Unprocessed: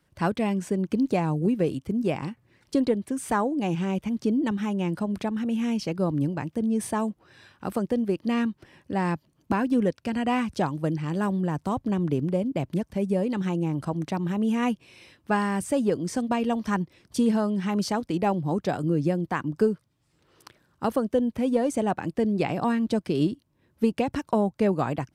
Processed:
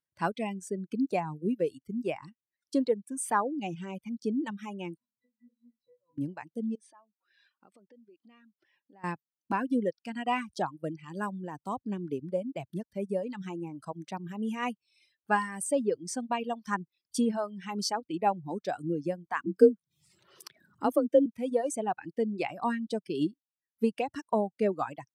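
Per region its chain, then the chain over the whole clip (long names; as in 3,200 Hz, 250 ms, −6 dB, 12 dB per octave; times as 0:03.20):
0:04.97–0:06.18: downward compressor 2.5 to 1, threshold −29 dBFS + resonances in every octave B, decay 0.42 s
0:06.75–0:09.04: downward compressor 12 to 1, threshold −38 dBFS + band-pass filter 170–5,400 Hz
0:19.46–0:21.26: frequency shifter +33 Hz + low-shelf EQ 360 Hz +6.5 dB + upward compression, threshold −27 dBFS
whole clip: reverb reduction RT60 1.2 s; spectral tilt +3 dB per octave; every bin expanded away from the loudest bin 1.5 to 1; level +2 dB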